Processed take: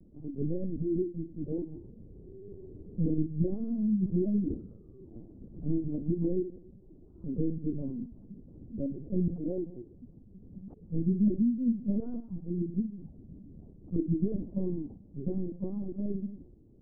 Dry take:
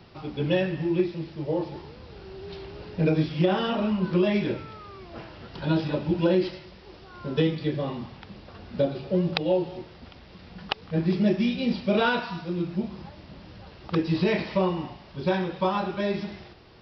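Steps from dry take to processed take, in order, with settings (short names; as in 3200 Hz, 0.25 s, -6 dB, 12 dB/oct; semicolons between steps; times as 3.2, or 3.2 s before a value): in parallel at 0 dB: limiter -17 dBFS, peak gain reduction 10.5 dB; on the sum: ladder low-pass 360 Hz, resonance 30%; LPC vocoder at 8 kHz pitch kept; gain -3.5 dB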